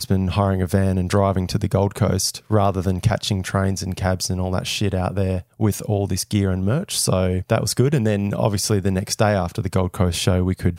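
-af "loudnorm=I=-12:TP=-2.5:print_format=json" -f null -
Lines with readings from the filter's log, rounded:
"input_i" : "-20.8",
"input_tp" : "-2.6",
"input_lra" : "1.8",
"input_thresh" : "-30.8",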